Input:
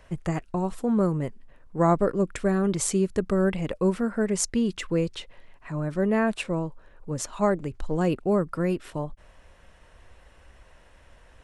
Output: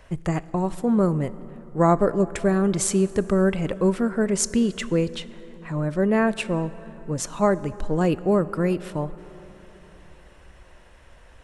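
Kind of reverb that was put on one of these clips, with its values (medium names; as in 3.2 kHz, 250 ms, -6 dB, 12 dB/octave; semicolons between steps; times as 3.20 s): plate-style reverb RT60 4.2 s, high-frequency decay 0.45×, DRR 16 dB; trim +3 dB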